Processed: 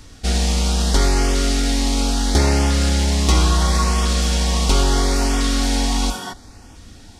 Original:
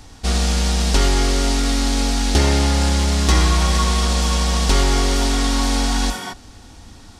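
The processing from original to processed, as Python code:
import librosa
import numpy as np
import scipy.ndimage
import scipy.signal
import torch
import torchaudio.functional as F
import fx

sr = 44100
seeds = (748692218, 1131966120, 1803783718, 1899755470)

y = fx.filter_lfo_notch(x, sr, shape='saw_up', hz=0.74, low_hz=750.0, high_hz=4300.0, q=2.5)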